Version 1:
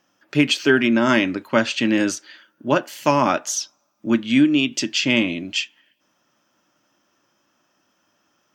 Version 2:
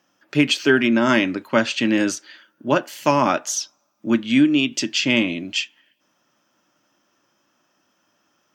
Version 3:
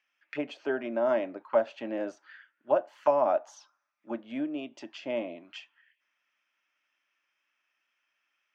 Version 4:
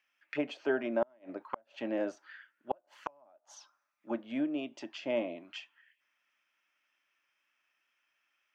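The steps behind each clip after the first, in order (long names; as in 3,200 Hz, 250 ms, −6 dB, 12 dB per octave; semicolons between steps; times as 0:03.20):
high-pass filter 84 Hz
envelope filter 650–2,300 Hz, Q 4.1, down, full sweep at −18 dBFS
gate with flip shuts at −18 dBFS, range −37 dB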